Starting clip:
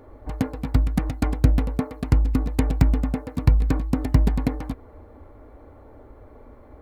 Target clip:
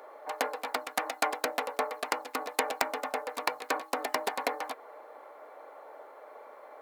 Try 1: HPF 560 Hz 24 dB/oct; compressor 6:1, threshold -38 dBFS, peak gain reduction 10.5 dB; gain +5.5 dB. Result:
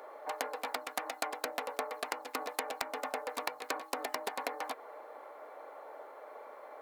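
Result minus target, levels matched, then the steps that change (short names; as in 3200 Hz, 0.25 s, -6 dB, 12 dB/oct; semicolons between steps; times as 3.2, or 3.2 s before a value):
compressor: peak gain reduction +10.5 dB
remove: compressor 6:1, threshold -38 dBFS, peak gain reduction 10.5 dB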